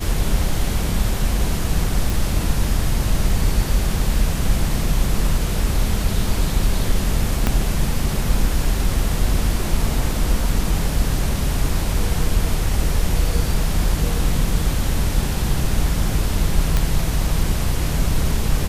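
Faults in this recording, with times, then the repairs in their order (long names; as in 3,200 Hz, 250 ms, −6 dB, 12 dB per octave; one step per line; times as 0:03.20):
0:02.10: click
0:07.47: click −4 dBFS
0:16.77: click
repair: click removal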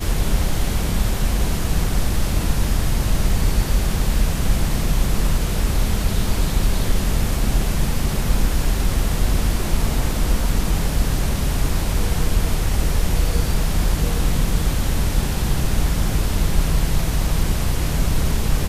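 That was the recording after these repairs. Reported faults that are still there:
0:07.47: click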